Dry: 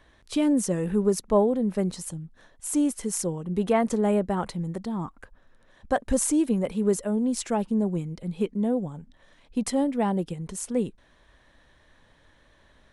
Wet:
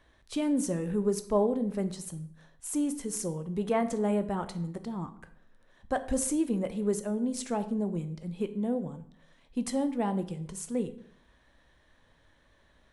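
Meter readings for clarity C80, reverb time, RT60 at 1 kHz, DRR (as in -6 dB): 16.5 dB, 0.65 s, 0.60 s, 10.0 dB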